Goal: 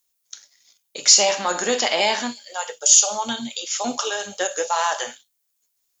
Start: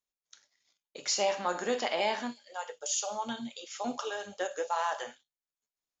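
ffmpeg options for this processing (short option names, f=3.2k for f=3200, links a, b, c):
-af "apsyclip=21dB,crystalizer=i=3.5:c=0,volume=-13dB"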